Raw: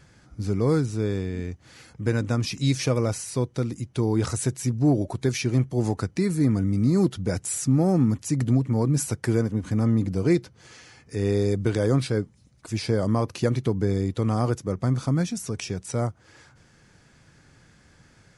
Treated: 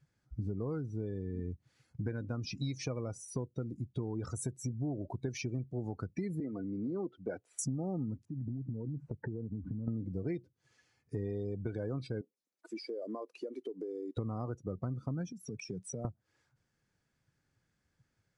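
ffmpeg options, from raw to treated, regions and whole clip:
-filter_complex "[0:a]asettb=1/sr,asplit=3[a][b][c];[a]atrim=end=6.404[d];[b]atrim=start=6.4:end=7.59,asetpts=PTS-STARTPTS,afade=t=in:d=0.004:c=qsin,afade=t=out:st=1.186:d=0.004:c=qsin,acrossover=split=280 3900:gain=0.1 1 0.1[e][f][g];[e][f][g]amix=inputs=3:normalize=0,bandreject=f=60:t=h:w=6,bandreject=f=120:t=h:w=6[h];[c]atrim=start=7.586[i];[d][h]acrossfade=d=0.004:c1=hsin:c2=qsin[j];[j][i]acrossfade=d=0.004:c1=qsin:c2=hsin,asettb=1/sr,asplit=3[k][l][m];[k]atrim=end=8.254[n];[l]atrim=start=8.25:end=9.88,asetpts=PTS-STARTPTS,afade=t=in:d=0.004:c=qsin,afade=t=out:st=1.626:d=0.004:c=qsin,lowpass=1.1k,acompressor=threshold=-33dB:ratio=6:attack=3.2:release=140:knee=1:detection=peak[o];[m]atrim=start=9.876[p];[n][o]acrossfade=d=0.004:c1=hsin:c2=qsin[q];[q][p]acrossfade=d=0.004:c1=qsin:c2=hsin,asettb=1/sr,asplit=3[r][s][t];[r]atrim=end=12.214[u];[s]atrim=start=12.21:end=14.17,asetpts=PTS-STARTPTS,afade=t=in:d=0.004:c=qsin,afade=t=out:st=1.956:d=0.004:c=qsin,highpass=f=310:w=0.5412,highpass=f=310:w=1.3066,acompressor=threshold=-36dB:ratio=6:attack=3.2:release=140:knee=1:detection=peak[v];[t]atrim=start=14.166[w];[u][v]acrossfade=d=0.004:c1=hsin:c2=qsin[x];[x][w]acrossfade=d=0.004:c1=qsin:c2=hsin,asettb=1/sr,asplit=3[y][z][aa];[y]atrim=end=15.324[ab];[z]atrim=start=15.32:end=16.05,asetpts=PTS-STARTPTS,afade=t=in:d=0.004:c=qsin,afade=t=out:st=0.726:d=0.004:c=qsin,highpass=f=120:w=0.5412,highpass=f=120:w=1.3066,acompressor=threshold=-34dB:ratio=16:attack=3.2:release=140:knee=1:detection=peak[ac];[aa]atrim=start=16.046[ad];[ab][ac]acrossfade=d=0.004:c1=hsin:c2=qsin[ae];[ae][ad]acrossfade=d=0.004:c1=qsin:c2=hsin,afftdn=nr=26:nf=-33,acompressor=threshold=-37dB:ratio=6,volume=2dB"

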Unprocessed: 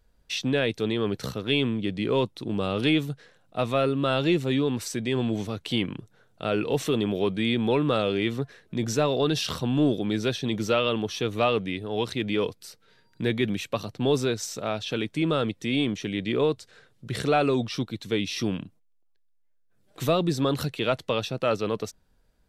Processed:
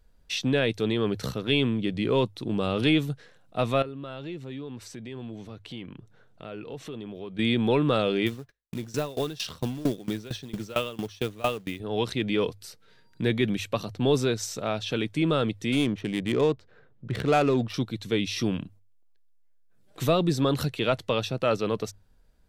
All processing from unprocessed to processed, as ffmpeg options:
-filter_complex "[0:a]asettb=1/sr,asplit=3[a][b][c];[a]atrim=end=3.824[d];[b]atrim=start=3.82:end=7.39,asetpts=PTS-STARTPTS,afade=t=in:d=0.004:c=qsin,afade=t=out:st=3.566:d=0.004:c=qsin,highshelf=f=6.7k:g=-10,acompressor=threshold=-46dB:ratio=2:attack=3.2:release=140:knee=1:detection=peak[e];[c]atrim=start=7.386[f];[d][e]acrossfade=d=0.004:c1=hsin:c2=qsin[g];[g][f]acrossfade=d=0.004:c1=qsin:c2=hsin,asettb=1/sr,asplit=3[h][i][j];[h]atrim=end=8.264[k];[i]atrim=start=8.26:end=11.8,asetpts=PTS-STARTPTS,afade=t=in:d=0.004:c=qsin,afade=t=out:st=3.536:d=0.004:c=qsin,agate=range=-33dB:threshold=-45dB:ratio=16:release=100:detection=peak,acrusher=bits=4:mode=log:mix=0:aa=0.000001,aeval=exprs='val(0)*pow(10,-21*if(lt(mod(4.4*n/s,1),2*abs(4.4)/1000),1-mod(4.4*n/s,1)/(2*abs(4.4)/1000),(mod(4.4*n/s,1)-2*abs(4.4)/1000)/(1-2*abs(4.4)/1000))/20)':c=same[l];[j]atrim=start=11.796[m];[k][l]acrossfade=d=0.004:c1=hsin:c2=qsin[n];[n][m]acrossfade=d=0.004:c1=qsin:c2=hsin,asettb=1/sr,asplit=3[o][p][q];[o]atrim=end=15.724[r];[p]atrim=start=15.72:end=17.74,asetpts=PTS-STARTPTS,afade=t=in:d=0.004:c=qsin,afade=t=out:st=2.016:d=0.004:c=qsin,adynamicsmooth=sensitivity=3:basefreq=1.5k,highshelf=f=6.1k:g=5[s];[q]atrim=start=17.736[t];[r][s]acrossfade=d=0.004:c1=hsin:c2=qsin[u];[u][t]acrossfade=d=0.004:c1=qsin:c2=hsin,lowshelf=f=85:g=6,bandreject=f=50:t=h:w=6,bandreject=f=100:t=h:w=6"

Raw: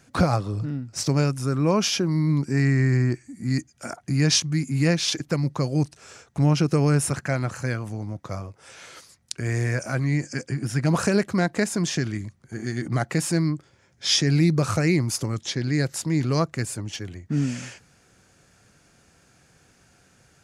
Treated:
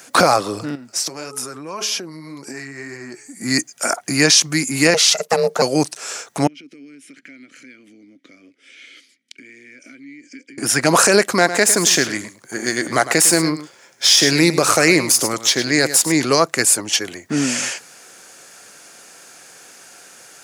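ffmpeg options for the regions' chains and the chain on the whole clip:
-filter_complex "[0:a]asettb=1/sr,asplit=3[a][b][c];[a]atrim=end=0.754[d];[b]atrim=start=0.75:end=3.41,asetpts=PTS-STARTPTS,afade=t=in:d=0.004:c=qsin,afade=t=out:st=2.656:d=0.004:c=qsin,bandreject=f=213.1:t=h:w=4,bandreject=f=426.2:t=h:w=4,bandreject=f=639.3:t=h:w=4,bandreject=f=852.4:t=h:w=4,bandreject=f=1.0655k:t=h:w=4,bandreject=f=1.2786k:t=h:w=4,flanger=delay=1.7:depth=5.7:regen=44:speed=1.8:shape=triangular,acompressor=threshold=-36dB:ratio=6:attack=3.2:release=140:knee=1:detection=peak[e];[c]atrim=start=3.406[f];[d][e]acrossfade=d=0.004:c1=hsin:c2=qsin[g];[g][f]acrossfade=d=0.004:c1=qsin:c2=hsin,asettb=1/sr,asplit=3[h][i][j];[h]atrim=end=4.944[k];[i]atrim=start=4.94:end=5.62,asetpts=PTS-STARTPTS,afade=t=in:d=0.004:c=qsin,afade=t=out:st=0.676:d=0.004:c=qsin,agate=range=-33dB:threshold=-41dB:ratio=3:release=100:detection=peak,aeval=exprs='val(0)*sin(2*PI*310*n/s)':c=same[l];[j]atrim=start=5.616[m];[k][l]acrossfade=d=0.004:c1=hsin:c2=qsin[n];[n][m]acrossfade=d=0.004:c1=qsin:c2=hsin,asettb=1/sr,asplit=3[o][p][q];[o]atrim=end=6.474[r];[p]atrim=start=6.47:end=10.58,asetpts=PTS-STARTPTS,afade=t=in:d=0.004:c=qsin,afade=t=out:st=4.106:d=0.004:c=qsin,bandreject=f=1.1k:w=13,acompressor=threshold=-33dB:ratio=10:attack=3.2:release=140:knee=1:detection=peak,asplit=3[s][t][u];[s]bandpass=f=270:t=q:w=8,volume=0dB[v];[t]bandpass=f=2.29k:t=q:w=8,volume=-6dB[w];[u]bandpass=f=3.01k:t=q:w=8,volume=-9dB[x];[v][w][x]amix=inputs=3:normalize=0[y];[q]atrim=start=10.576[z];[r][y]acrossfade=d=0.004:c1=hsin:c2=qsin[aa];[aa][z]acrossfade=d=0.004:c1=qsin:c2=hsin,asettb=1/sr,asplit=3[ab][ac][ad];[ab]atrim=end=11.354[ae];[ac]atrim=start=11.35:end=16.12,asetpts=PTS-STARTPTS,afade=t=in:d=0.004:c=qsin,afade=t=out:st=4.766:d=0.004:c=qsin,aeval=exprs='if(lt(val(0),0),0.708*val(0),val(0))':c=same,aecho=1:1:104:0.211,atrim=end_sample=210357[af];[ad]atrim=start=16.116[ag];[ae][af]acrossfade=d=0.004:c1=hsin:c2=qsin[ah];[ah][ag]acrossfade=d=0.004:c1=qsin:c2=hsin,highpass=420,highshelf=f=7.3k:g=10.5,alimiter=level_in=15.5dB:limit=-1dB:release=50:level=0:latency=1,volume=-1dB"

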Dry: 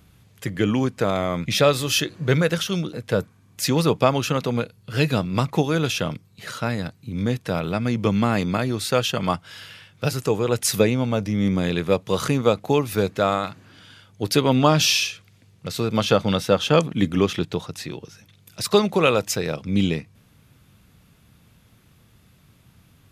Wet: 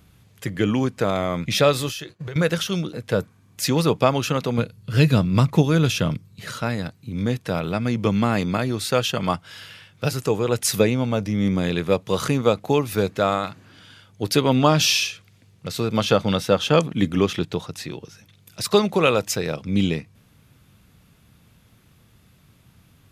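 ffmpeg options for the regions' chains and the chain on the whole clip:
-filter_complex "[0:a]asettb=1/sr,asplit=3[a][b][c];[a]atrim=end=1.894[d];[b]atrim=start=1.89:end=2.36,asetpts=PTS-STARTPTS,afade=t=in:d=0.004:c=qsin,afade=t=out:st=0.466:d=0.004:c=qsin,agate=range=-33dB:threshold=-34dB:ratio=3:release=100:detection=peak,equalizer=f=250:t=o:w=0.34:g=-13.5,acompressor=threshold=-28dB:ratio=16:attack=3.2:release=140:knee=1:detection=peak[e];[c]atrim=start=2.356[f];[d][e]acrossfade=d=0.004:c1=hsin:c2=qsin[g];[g][f]acrossfade=d=0.004:c1=qsin:c2=hsin,asettb=1/sr,asplit=3[h][i][j];[h]atrim=end=4.584[k];[i]atrim=start=4.58:end=6.62,asetpts=PTS-STARTPTS,afade=t=in:d=0.004:c=qsin,afade=t=out:st=2.036:d=0.004:c=qsin,bass=f=250:g=7,treble=f=4k:g=1,bandreject=f=770:w=11[l];[j]atrim=start=6.616[m];[k][l]acrossfade=d=0.004:c1=hsin:c2=qsin[n];[n][m]acrossfade=d=0.004:c1=qsin:c2=hsin"

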